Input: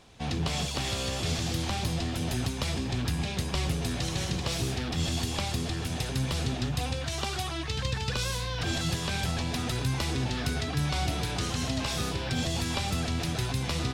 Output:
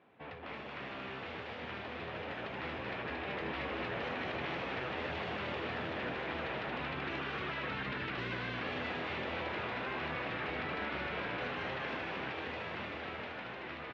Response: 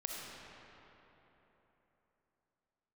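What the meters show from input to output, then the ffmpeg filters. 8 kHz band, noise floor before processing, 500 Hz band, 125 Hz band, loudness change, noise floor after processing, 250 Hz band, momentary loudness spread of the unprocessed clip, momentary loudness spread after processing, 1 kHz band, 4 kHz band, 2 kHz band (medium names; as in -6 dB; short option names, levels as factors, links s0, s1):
under -30 dB, -34 dBFS, -3.5 dB, -17.5 dB, -8.5 dB, -45 dBFS, -10.5 dB, 2 LU, 5 LU, -3.5 dB, -12.5 dB, -1.0 dB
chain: -filter_complex "[0:a]highpass=230,afftfilt=real='re*lt(hypot(re,im),0.0631)':imag='im*lt(hypot(re,im),0.0631)':win_size=1024:overlap=0.75,lowpass=f=2300:w=0.5412,lowpass=f=2300:w=1.3066,adynamicequalizer=threshold=0.00178:dfrequency=830:dqfactor=1.7:tfrequency=830:tqfactor=1.7:attack=5:release=100:ratio=0.375:range=2:mode=cutabove:tftype=bell,dynaudnorm=f=410:g=13:m=2.82,alimiter=level_in=1.33:limit=0.0631:level=0:latency=1:release=29,volume=0.75,asplit=9[s0][s1][s2][s3][s4][s5][s6][s7][s8];[s1]adelay=228,afreqshift=130,volume=0.708[s9];[s2]adelay=456,afreqshift=260,volume=0.389[s10];[s3]adelay=684,afreqshift=390,volume=0.214[s11];[s4]adelay=912,afreqshift=520,volume=0.117[s12];[s5]adelay=1140,afreqshift=650,volume=0.0646[s13];[s6]adelay=1368,afreqshift=780,volume=0.0355[s14];[s7]adelay=1596,afreqshift=910,volume=0.0195[s15];[s8]adelay=1824,afreqshift=1040,volume=0.0108[s16];[s0][s9][s10][s11][s12][s13][s14][s15][s16]amix=inputs=9:normalize=0,volume=0.531"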